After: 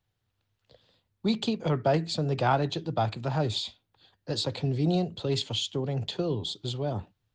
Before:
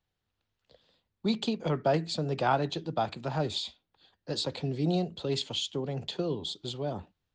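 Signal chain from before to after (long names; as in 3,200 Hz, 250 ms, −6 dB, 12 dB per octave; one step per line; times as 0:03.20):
parametric band 110 Hz +11.5 dB 0.39 octaves
in parallel at −11.5 dB: soft clipping −23 dBFS, distortion −14 dB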